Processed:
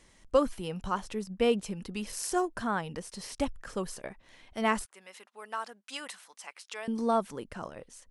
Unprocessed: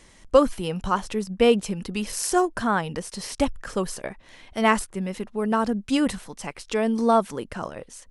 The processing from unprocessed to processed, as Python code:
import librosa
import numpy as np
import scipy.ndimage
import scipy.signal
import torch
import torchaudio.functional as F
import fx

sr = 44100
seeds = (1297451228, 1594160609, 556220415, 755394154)

y = fx.highpass(x, sr, hz=960.0, slope=12, at=(4.85, 6.88))
y = y * librosa.db_to_amplitude(-8.0)